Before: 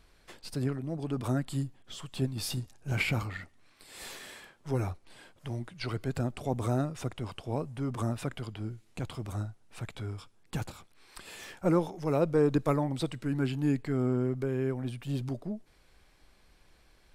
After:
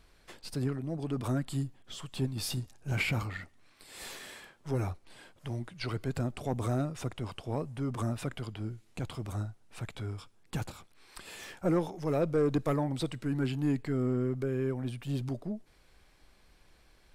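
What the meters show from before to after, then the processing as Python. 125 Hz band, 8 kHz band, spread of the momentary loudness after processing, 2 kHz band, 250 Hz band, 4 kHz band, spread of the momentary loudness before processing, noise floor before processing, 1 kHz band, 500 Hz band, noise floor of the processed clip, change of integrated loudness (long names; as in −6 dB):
−1.0 dB, −0.5 dB, 15 LU, −1.0 dB, −1.5 dB, −0.5 dB, 16 LU, −63 dBFS, −2.0 dB, −1.5 dB, −63 dBFS, −1.5 dB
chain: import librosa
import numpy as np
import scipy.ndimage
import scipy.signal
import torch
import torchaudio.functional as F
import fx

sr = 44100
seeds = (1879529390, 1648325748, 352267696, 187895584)

y = 10.0 ** (-20.0 / 20.0) * np.tanh(x / 10.0 ** (-20.0 / 20.0))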